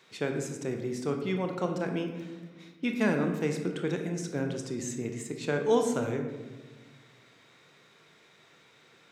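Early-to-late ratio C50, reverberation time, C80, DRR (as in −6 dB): 6.0 dB, 1.3 s, 8.0 dB, 4.0 dB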